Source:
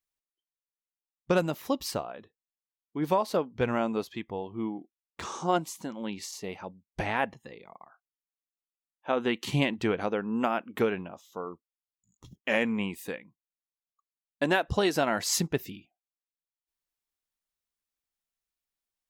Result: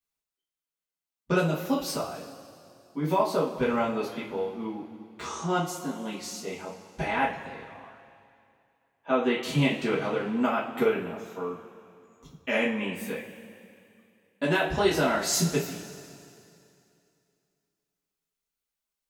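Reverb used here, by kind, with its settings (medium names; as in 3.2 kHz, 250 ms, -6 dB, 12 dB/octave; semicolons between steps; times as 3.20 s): two-slope reverb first 0.29 s, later 2.6 s, from -18 dB, DRR -8 dB; trim -6.5 dB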